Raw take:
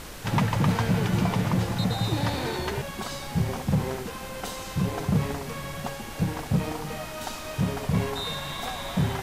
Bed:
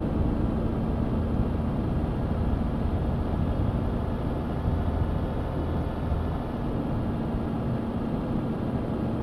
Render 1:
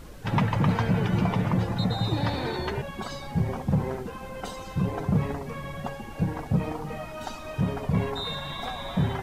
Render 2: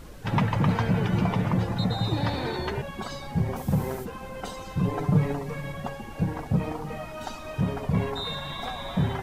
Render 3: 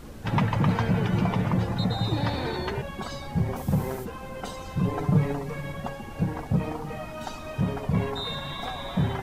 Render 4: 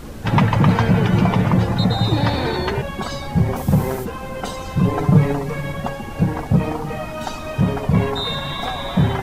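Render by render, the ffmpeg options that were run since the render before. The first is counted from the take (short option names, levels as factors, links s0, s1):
-af "afftdn=nr=12:nf=-38"
-filter_complex "[0:a]asplit=3[s0][s1][s2];[s0]afade=t=out:st=3.55:d=0.02[s3];[s1]aemphasis=mode=production:type=50fm,afade=t=in:st=3.55:d=0.02,afade=t=out:st=4.04:d=0.02[s4];[s2]afade=t=in:st=4.04:d=0.02[s5];[s3][s4][s5]amix=inputs=3:normalize=0,asettb=1/sr,asplit=3[s6][s7][s8];[s6]atrim=end=4.824[s9];[s7]atrim=start=4.82:end=5.72,asetpts=PTS-STARTPTS,afade=t=in:d=0.004:c=qsin,afade=t=out:st=0.896:d=0.004:c=qsin,aecho=1:1:6.8:0.65,atrim=end_sample=39690[s10];[s8]atrim=start=5.716[s11];[s9][s10]acrossfade=d=0.004:c1=hsin:c2=qsin[s12];[s12][s11]acrossfade=d=0.004:c1=qsin:c2=hsin"
-filter_complex "[1:a]volume=0.112[s0];[0:a][s0]amix=inputs=2:normalize=0"
-af "volume=2.66"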